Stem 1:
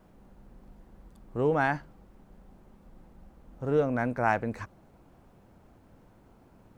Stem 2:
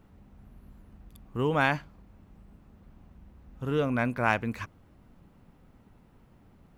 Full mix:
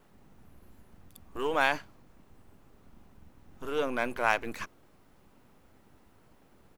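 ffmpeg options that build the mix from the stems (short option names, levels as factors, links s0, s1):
-filter_complex "[0:a]equalizer=f=600:w=1.3:g=-13.5,alimiter=level_in=1.5:limit=0.0631:level=0:latency=1,volume=0.668,aeval=exprs='abs(val(0))':c=same,volume=0.841[s0];[1:a]bass=f=250:g=-15,treble=f=4000:g=6,adelay=1.3,volume=0.944[s1];[s0][s1]amix=inputs=2:normalize=0"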